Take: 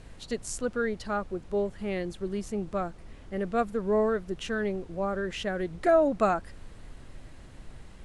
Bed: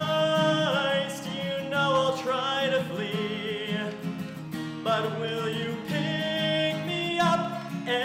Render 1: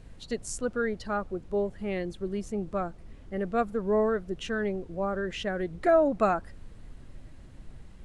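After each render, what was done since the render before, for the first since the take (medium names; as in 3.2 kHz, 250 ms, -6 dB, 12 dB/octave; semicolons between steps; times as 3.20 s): noise reduction 6 dB, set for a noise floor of -48 dBFS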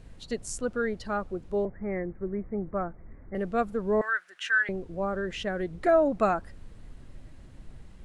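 1.65–3.35 s: steep low-pass 2.2 kHz 96 dB/octave; 4.01–4.69 s: resonant high-pass 1.6 kHz, resonance Q 5.1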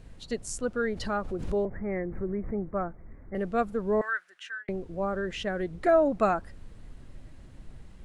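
0.87–2.71 s: swell ahead of each attack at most 61 dB/s; 3.71–4.68 s: fade out equal-power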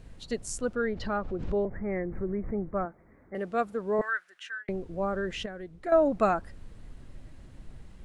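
0.75–1.67 s: distance through air 130 m; 2.85–3.99 s: high-pass 300 Hz 6 dB/octave; 5.46–5.92 s: gain -9.5 dB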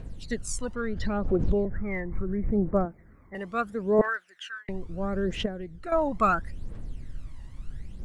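phaser 0.74 Hz, delay 1.1 ms, feedback 67%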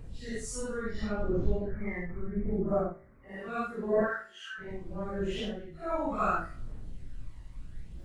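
phase randomisation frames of 200 ms; feedback comb 55 Hz, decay 0.56 s, harmonics all, mix 50%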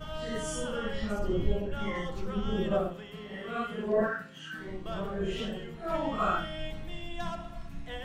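add bed -14.5 dB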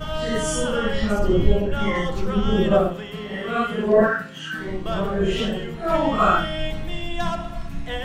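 trim +11 dB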